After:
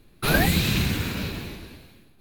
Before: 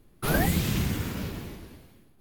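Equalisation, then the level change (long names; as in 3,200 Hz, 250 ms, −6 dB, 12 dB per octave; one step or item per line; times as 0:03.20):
thirty-one-band graphic EQ 1,600 Hz +4 dB, 2,500 Hz +8 dB, 4,000 Hz +10 dB
+3.0 dB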